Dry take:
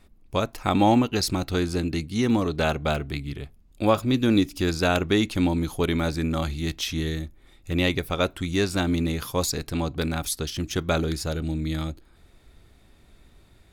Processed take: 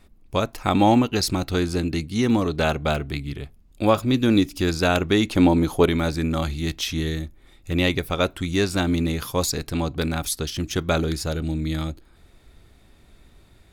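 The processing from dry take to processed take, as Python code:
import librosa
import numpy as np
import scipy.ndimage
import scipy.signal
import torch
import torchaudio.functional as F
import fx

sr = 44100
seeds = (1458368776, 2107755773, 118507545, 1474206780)

y = fx.peak_eq(x, sr, hz=570.0, db=7.0, octaves=2.8, at=(5.3, 5.89))
y = F.gain(torch.from_numpy(y), 2.0).numpy()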